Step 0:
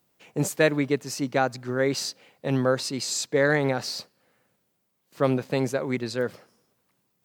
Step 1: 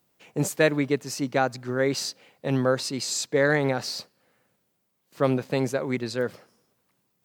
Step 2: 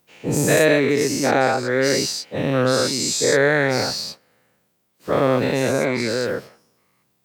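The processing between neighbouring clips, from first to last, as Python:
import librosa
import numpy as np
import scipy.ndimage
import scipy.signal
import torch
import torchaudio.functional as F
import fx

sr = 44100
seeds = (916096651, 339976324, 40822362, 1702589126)

y1 = x
y2 = fx.spec_dilate(y1, sr, span_ms=240)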